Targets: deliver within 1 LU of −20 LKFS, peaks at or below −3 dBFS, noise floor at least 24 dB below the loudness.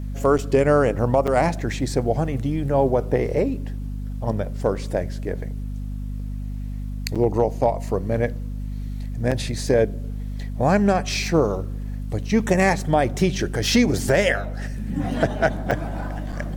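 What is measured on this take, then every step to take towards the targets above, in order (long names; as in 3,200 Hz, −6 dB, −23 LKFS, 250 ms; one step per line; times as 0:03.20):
number of dropouts 6; longest dropout 6.4 ms; mains hum 50 Hz; hum harmonics up to 250 Hz; level of the hum −26 dBFS; integrated loudness −23.0 LKFS; sample peak −6.5 dBFS; target loudness −20.0 LKFS
→ repair the gap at 0:00.38/0:01.27/0:07.15/0:09.31/0:15.71/0:16.32, 6.4 ms
mains-hum notches 50/100/150/200/250 Hz
level +3 dB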